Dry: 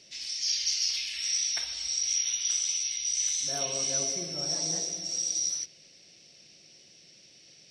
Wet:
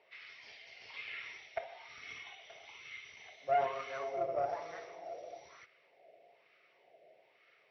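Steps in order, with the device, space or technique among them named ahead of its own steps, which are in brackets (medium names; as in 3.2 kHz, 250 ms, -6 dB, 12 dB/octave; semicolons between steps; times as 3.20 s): 2.00–2.40 s: comb 2.7 ms, depth 50%; wah-wah guitar rig (wah-wah 1.1 Hz 640–1300 Hz, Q 5.5; valve stage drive 43 dB, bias 0.7; cabinet simulation 82–3500 Hz, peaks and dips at 110 Hz +4 dB, 190 Hz -8 dB, 300 Hz -4 dB, 430 Hz +10 dB, 660 Hz +7 dB, 2.1 kHz +9 dB); trim +14 dB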